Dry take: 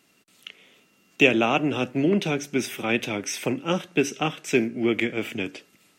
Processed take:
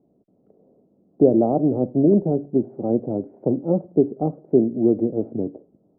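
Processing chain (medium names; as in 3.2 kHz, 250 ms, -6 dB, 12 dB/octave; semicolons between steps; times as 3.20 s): steep low-pass 690 Hz 36 dB/octave; trim +5.5 dB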